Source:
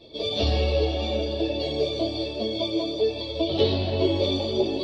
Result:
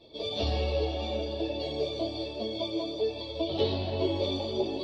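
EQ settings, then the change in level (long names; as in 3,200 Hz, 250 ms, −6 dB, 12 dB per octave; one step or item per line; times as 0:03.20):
parametric band 890 Hz +4.5 dB 0.72 octaves
−6.5 dB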